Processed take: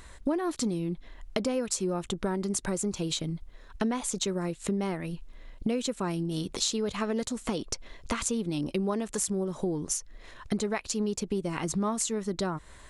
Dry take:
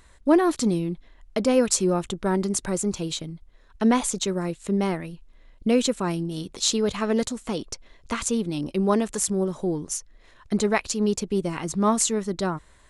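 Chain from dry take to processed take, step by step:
downward compressor 6 to 1, threshold −33 dBFS, peak gain reduction 18.5 dB
level +5.5 dB

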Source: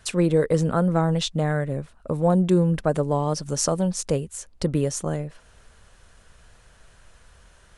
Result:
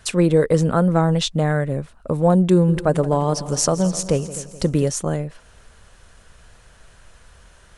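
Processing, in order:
0:02.51–0:04.90: echo machine with several playback heads 85 ms, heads second and third, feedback 47%, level −17 dB
level +4 dB

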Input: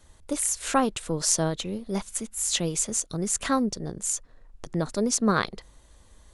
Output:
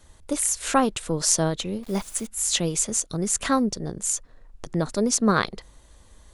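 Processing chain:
0:01.83–0:02.27: bit-depth reduction 8 bits, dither none
level +2.5 dB

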